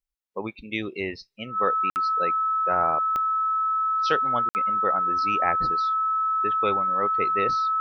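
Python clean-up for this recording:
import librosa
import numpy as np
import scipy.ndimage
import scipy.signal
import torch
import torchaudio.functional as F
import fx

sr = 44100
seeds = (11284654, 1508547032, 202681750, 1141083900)

y = fx.fix_declick_ar(x, sr, threshold=10.0)
y = fx.notch(y, sr, hz=1300.0, q=30.0)
y = fx.fix_interpolate(y, sr, at_s=(1.9, 4.49), length_ms=59.0)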